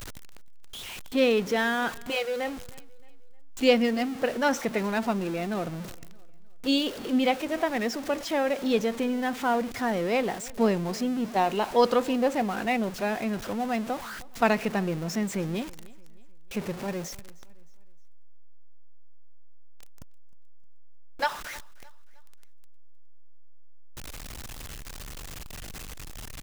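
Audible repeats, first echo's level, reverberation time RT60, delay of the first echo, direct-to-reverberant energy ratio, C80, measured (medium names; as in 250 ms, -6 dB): 2, -22.5 dB, no reverb, 310 ms, no reverb, no reverb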